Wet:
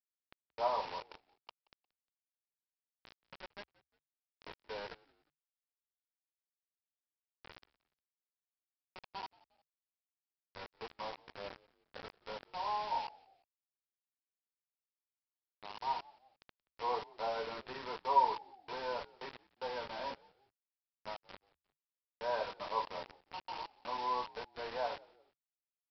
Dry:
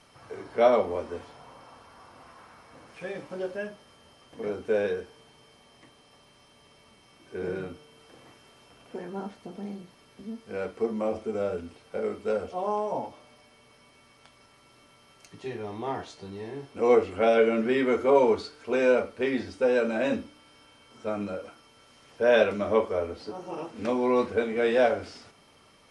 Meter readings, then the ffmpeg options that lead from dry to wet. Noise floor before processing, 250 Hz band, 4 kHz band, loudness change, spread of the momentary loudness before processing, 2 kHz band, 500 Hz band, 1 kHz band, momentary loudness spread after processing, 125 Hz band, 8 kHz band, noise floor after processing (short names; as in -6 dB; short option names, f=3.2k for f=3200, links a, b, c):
-59 dBFS, -26.0 dB, -5.5 dB, -12.5 dB, 18 LU, -14.5 dB, -19.0 dB, -4.0 dB, 21 LU, -19.5 dB, n/a, under -85 dBFS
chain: -filter_complex "[0:a]bandpass=f=940:t=q:w=11:csg=0,aresample=11025,acrusher=bits=7:mix=0:aa=0.000001,aresample=44100,asplit=3[a][b][c];[b]adelay=177,afreqshift=-76,volume=-24dB[d];[c]adelay=354,afreqshift=-152,volume=-32.2dB[e];[a][d][e]amix=inputs=3:normalize=0,volume=3.5dB"